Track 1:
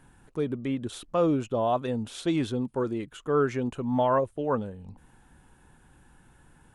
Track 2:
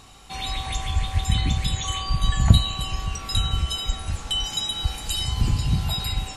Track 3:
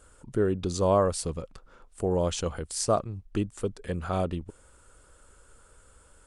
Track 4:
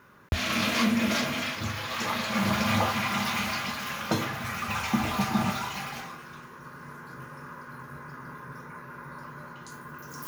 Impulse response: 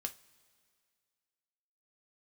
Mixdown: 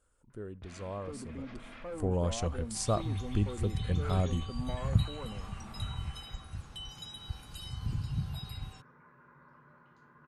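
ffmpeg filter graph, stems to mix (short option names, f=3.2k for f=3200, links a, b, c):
-filter_complex "[0:a]asoftclip=type=hard:threshold=-25dB,adelay=700,volume=-11.5dB,asplit=2[a][b];[b]volume=-8dB[c];[1:a]equalizer=f=130:w=0.88:g=10,bandreject=f=7.3k:w=6.8,adelay=2450,volume=-19dB[d];[2:a]asubboost=boost=3.5:cutoff=180,volume=-7dB,afade=t=in:st=1.29:d=0.38:silence=0.251189,asplit=3[e][f][g];[f]volume=-11.5dB[h];[3:a]adelay=300,volume=-16.5dB[i];[g]apad=whole_len=466335[j];[i][j]sidechaincompress=threshold=-47dB:ratio=8:attack=12:release=390[k];[a][k]amix=inputs=2:normalize=0,lowpass=2.4k,alimiter=level_in=16.5dB:limit=-24dB:level=0:latency=1:release=32,volume=-16.5dB,volume=0dB[l];[4:a]atrim=start_sample=2205[m];[c][h]amix=inputs=2:normalize=0[n];[n][m]afir=irnorm=-1:irlink=0[o];[d][e][l][o]amix=inputs=4:normalize=0"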